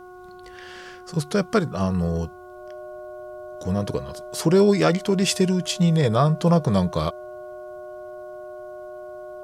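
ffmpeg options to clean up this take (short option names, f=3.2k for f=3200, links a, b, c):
-af "bandreject=f=363.8:t=h:w=4,bandreject=f=727.6:t=h:w=4,bandreject=f=1.0914k:t=h:w=4,bandreject=f=1.4552k:t=h:w=4,bandreject=f=610:w=30"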